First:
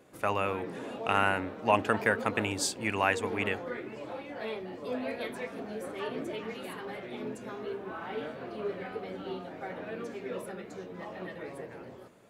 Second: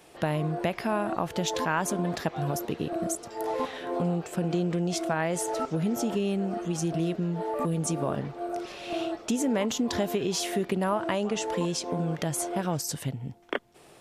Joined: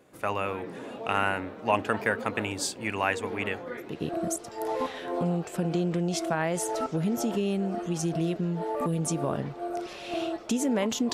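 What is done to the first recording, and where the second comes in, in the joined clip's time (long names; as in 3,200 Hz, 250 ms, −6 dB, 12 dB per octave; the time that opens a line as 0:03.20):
first
0:03.91: continue with second from 0:02.70, crossfade 0.28 s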